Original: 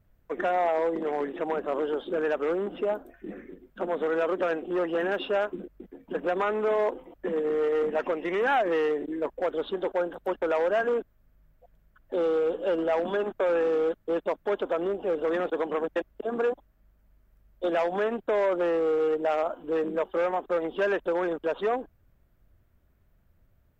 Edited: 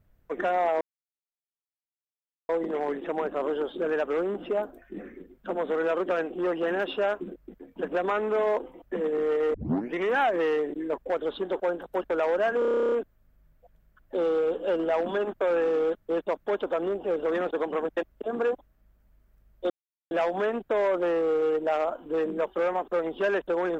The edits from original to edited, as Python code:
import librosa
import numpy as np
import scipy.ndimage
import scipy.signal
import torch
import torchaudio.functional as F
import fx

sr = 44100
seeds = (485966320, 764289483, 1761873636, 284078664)

y = fx.edit(x, sr, fx.insert_silence(at_s=0.81, length_s=1.68),
    fx.tape_start(start_s=7.86, length_s=0.4),
    fx.stutter(start_s=10.91, slice_s=0.03, count=12),
    fx.insert_silence(at_s=17.69, length_s=0.41), tone=tone)